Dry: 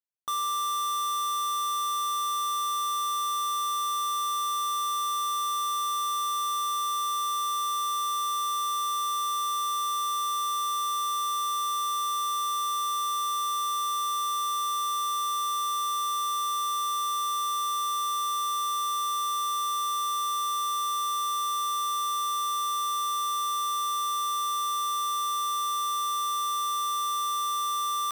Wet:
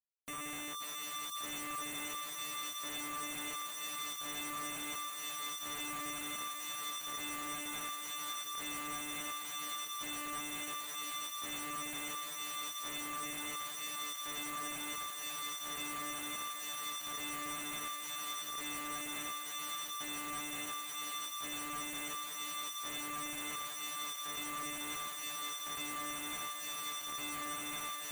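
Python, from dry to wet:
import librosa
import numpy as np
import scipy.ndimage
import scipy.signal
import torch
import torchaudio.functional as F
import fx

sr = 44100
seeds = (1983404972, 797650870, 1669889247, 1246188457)

y = fx.octave_divider(x, sr, octaves=2, level_db=-5.0)
y = scipy.signal.sosfilt(scipy.signal.cheby2(4, 50, [630.0, 2400.0], 'bandstop', fs=sr, output='sos'), y)
y = fx.rotary(y, sr, hz=0.7)
y = fx.schmitt(y, sr, flips_db=-47.5)
y = fx.low_shelf(y, sr, hz=360.0, db=-3.5)
y = fx.spec_gate(y, sr, threshold_db=-30, keep='strong')
y = fx.peak_eq(y, sr, hz=5300.0, db=-11.0, octaves=0.35)
y = fx.echo_thinned(y, sr, ms=541, feedback_pct=60, hz=790.0, wet_db=-3.5)
y = y * 10.0 ** (1.0 / 20.0)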